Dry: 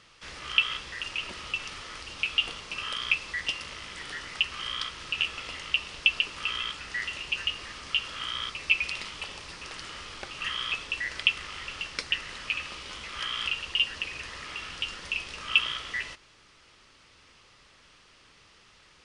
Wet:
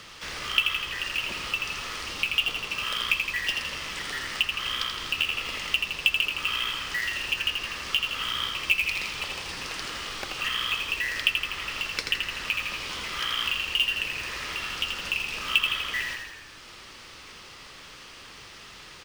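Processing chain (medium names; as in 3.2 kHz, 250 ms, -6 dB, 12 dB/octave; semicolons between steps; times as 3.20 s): short-mantissa float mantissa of 2-bit; frequency-shifting echo 82 ms, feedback 56%, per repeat -34 Hz, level -5 dB; three bands compressed up and down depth 40%; trim +2 dB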